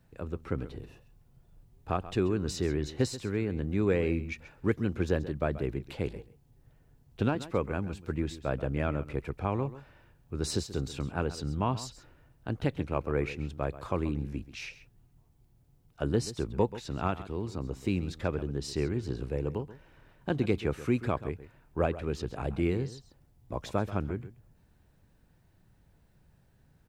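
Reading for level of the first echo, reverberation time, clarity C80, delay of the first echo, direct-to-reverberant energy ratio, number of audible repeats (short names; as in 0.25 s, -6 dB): -15.0 dB, none, none, 0.133 s, none, 1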